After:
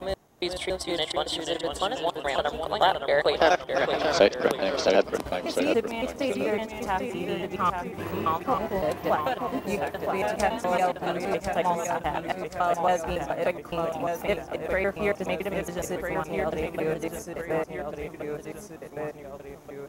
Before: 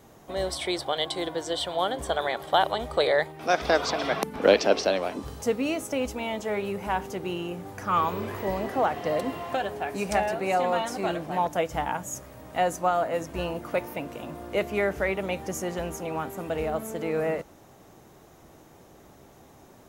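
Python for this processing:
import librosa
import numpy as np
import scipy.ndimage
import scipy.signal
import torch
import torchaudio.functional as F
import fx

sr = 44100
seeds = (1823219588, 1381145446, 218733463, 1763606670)

y = fx.block_reorder(x, sr, ms=140.0, group=3)
y = fx.transient(y, sr, attack_db=0, sustain_db=-8)
y = fx.echo_pitch(y, sr, ms=425, semitones=-1, count=2, db_per_echo=-6.0)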